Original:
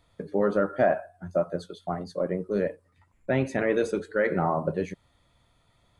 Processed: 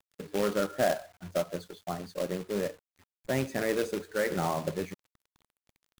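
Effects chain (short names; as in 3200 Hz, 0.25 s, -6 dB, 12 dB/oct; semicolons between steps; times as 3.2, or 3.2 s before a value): companded quantiser 4-bit; gain -5 dB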